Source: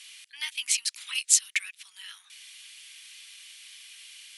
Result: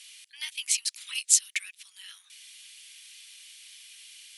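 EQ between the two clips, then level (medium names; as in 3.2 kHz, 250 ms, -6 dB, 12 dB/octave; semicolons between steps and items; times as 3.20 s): treble shelf 2 kHz +9.5 dB; -9.0 dB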